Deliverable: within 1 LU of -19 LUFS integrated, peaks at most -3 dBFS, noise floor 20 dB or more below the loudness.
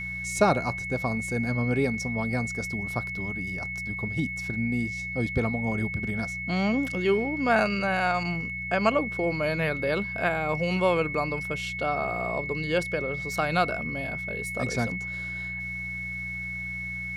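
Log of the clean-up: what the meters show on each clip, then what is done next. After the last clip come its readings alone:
hum 60 Hz; harmonics up to 180 Hz; hum level -38 dBFS; steady tone 2200 Hz; tone level -32 dBFS; loudness -27.5 LUFS; peak -8.0 dBFS; loudness target -19.0 LUFS
-> de-hum 60 Hz, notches 3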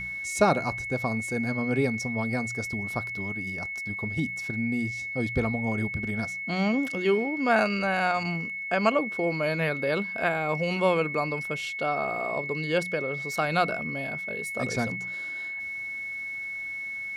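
hum none; steady tone 2200 Hz; tone level -32 dBFS
-> notch 2200 Hz, Q 30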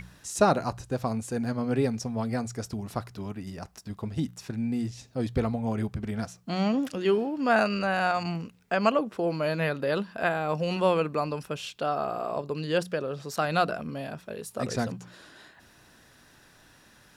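steady tone none; loudness -29.0 LUFS; peak -8.0 dBFS; loudness target -19.0 LUFS
-> gain +10 dB; limiter -3 dBFS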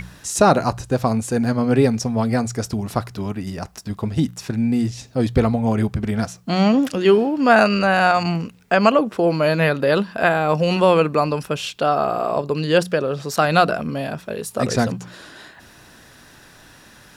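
loudness -19.5 LUFS; peak -3.0 dBFS; noise floor -47 dBFS

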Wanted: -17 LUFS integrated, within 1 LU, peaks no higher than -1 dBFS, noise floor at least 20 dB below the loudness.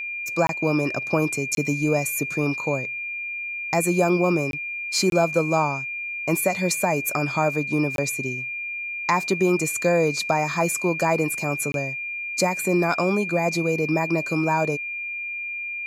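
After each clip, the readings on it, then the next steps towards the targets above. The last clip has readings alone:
dropouts 6; longest dropout 22 ms; steady tone 2400 Hz; tone level -28 dBFS; loudness -23.0 LUFS; peak -7.0 dBFS; loudness target -17.0 LUFS
-> interpolate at 0.47/1.55/4.51/5.1/7.96/11.72, 22 ms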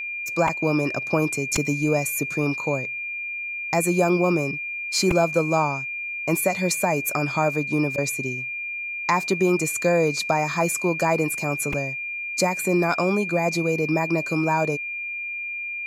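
dropouts 0; steady tone 2400 Hz; tone level -28 dBFS
-> notch 2400 Hz, Q 30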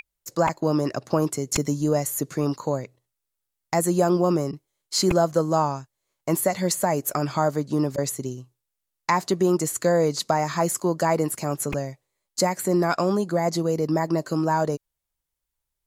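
steady tone none; loudness -24.0 LUFS; peak -7.0 dBFS; loudness target -17.0 LUFS
-> gain +7 dB; limiter -1 dBFS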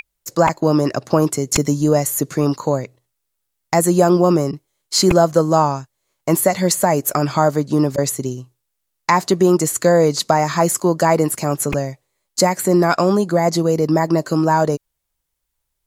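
loudness -17.0 LUFS; peak -1.0 dBFS; noise floor -75 dBFS

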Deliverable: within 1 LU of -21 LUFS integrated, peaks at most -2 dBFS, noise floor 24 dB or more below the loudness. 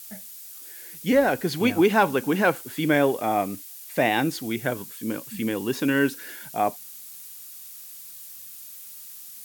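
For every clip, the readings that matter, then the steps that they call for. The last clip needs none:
noise floor -42 dBFS; noise floor target -48 dBFS; loudness -24.0 LUFS; peak -8.0 dBFS; loudness target -21.0 LUFS
-> denoiser 6 dB, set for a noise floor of -42 dBFS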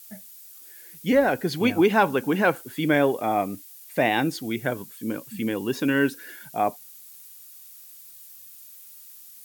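noise floor -47 dBFS; noise floor target -48 dBFS
-> denoiser 6 dB, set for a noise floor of -47 dBFS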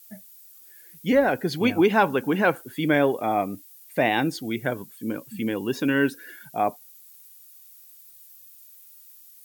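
noise floor -50 dBFS; loudness -24.5 LUFS; peak -8.0 dBFS; loudness target -21.0 LUFS
-> gain +3.5 dB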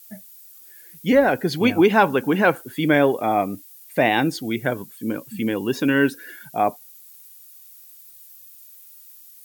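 loudness -21.0 LUFS; peak -4.5 dBFS; noise floor -47 dBFS

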